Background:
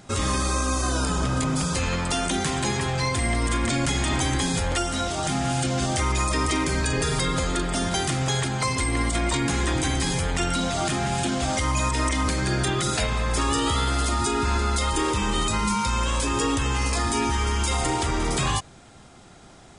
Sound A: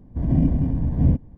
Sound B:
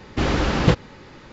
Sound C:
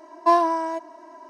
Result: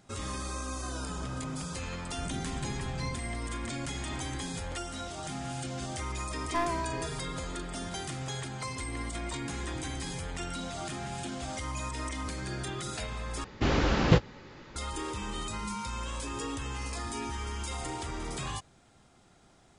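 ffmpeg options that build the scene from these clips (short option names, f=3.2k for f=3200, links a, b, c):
-filter_complex "[0:a]volume=-12.5dB[a];[1:a]acompressor=threshold=-26dB:ratio=6:attack=3.2:release=140:knee=1:detection=peak[b];[3:a]aeval=exprs='clip(val(0),-1,0.119)':c=same[c];[2:a]asplit=2[d][e];[e]adelay=18,volume=-13.5dB[f];[d][f]amix=inputs=2:normalize=0[g];[a]asplit=2[h][i];[h]atrim=end=13.444[j];[g]atrim=end=1.32,asetpts=PTS-STARTPTS,volume=-5.5dB[k];[i]atrim=start=14.756[l];[b]atrim=end=1.37,asetpts=PTS-STARTPTS,volume=-9dB,afade=t=in:d=0.004:c=hsin,afade=t=out:st=1.366:d=0.004:c=hsin,adelay=2020[m];[c]atrim=end=1.29,asetpts=PTS-STARTPTS,volume=-11dB,afade=t=in:d=0.004:c=hsin,afade=t=out:st=1.286:d=0.004:c=hsin,adelay=6280[n];[j][k]acrossfade=d=0.004:c1=hsin:c2=hsin[o];[o][l]acrossfade=d=0.004:c1=hsin:c2=hsin[p];[p][m][n]amix=inputs=3:normalize=0"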